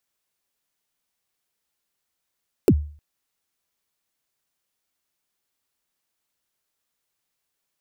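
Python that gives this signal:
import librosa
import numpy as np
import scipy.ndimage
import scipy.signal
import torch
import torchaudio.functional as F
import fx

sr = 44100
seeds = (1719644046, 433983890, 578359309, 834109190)

y = fx.drum_kick(sr, seeds[0], length_s=0.31, level_db=-8, start_hz=470.0, end_hz=74.0, sweep_ms=58.0, decay_s=0.44, click=True)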